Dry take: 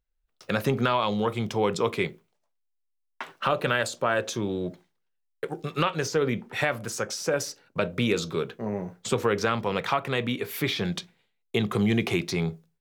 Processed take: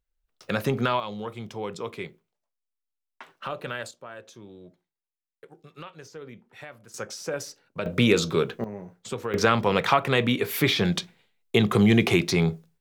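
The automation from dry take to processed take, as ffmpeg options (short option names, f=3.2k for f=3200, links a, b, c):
-af "asetnsamples=n=441:p=0,asendcmd='1 volume volume -8.5dB;3.91 volume volume -17dB;6.94 volume volume -5dB;7.86 volume volume 5dB;8.64 volume volume -7dB;9.34 volume volume 5dB',volume=-0.5dB"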